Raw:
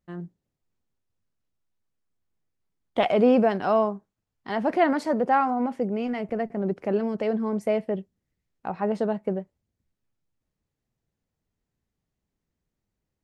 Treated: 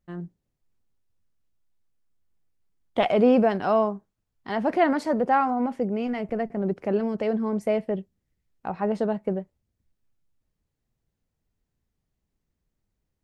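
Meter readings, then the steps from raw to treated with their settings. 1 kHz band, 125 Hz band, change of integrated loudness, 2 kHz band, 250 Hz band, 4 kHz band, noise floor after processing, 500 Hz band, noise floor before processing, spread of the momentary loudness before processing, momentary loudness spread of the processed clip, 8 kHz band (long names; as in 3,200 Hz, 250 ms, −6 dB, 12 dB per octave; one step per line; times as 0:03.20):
0.0 dB, +1.0 dB, +0.5 dB, 0.0 dB, +0.5 dB, 0.0 dB, −81 dBFS, 0.0 dB, −84 dBFS, 13 LU, 13 LU, can't be measured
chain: low-shelf EQ 61 Hz +9 dB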